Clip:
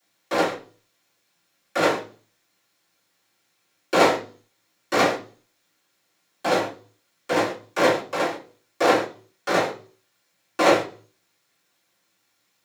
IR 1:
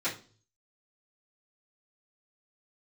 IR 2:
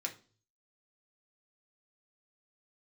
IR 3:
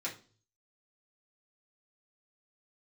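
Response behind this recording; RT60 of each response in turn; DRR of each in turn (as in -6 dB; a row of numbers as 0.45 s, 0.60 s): 1; 0.40 s, 0.40 s, 0.40 s; -13.5 dB, 0.5 dB, -6.5 dB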